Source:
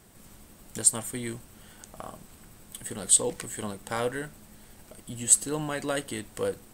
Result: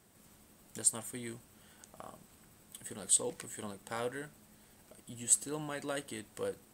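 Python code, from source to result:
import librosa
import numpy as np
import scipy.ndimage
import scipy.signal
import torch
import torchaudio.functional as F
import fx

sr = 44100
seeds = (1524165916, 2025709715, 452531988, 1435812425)

y = fx.highpass(x, sr, hz=94.0, slope=6)
y = y * librosa.db_to_amplitude(-8.0)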